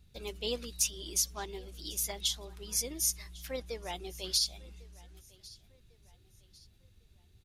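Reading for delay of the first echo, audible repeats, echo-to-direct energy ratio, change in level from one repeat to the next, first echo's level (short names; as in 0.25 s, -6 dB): 1.1 s, 2, -22.0 dB, -8.0 dB, -22.5 dB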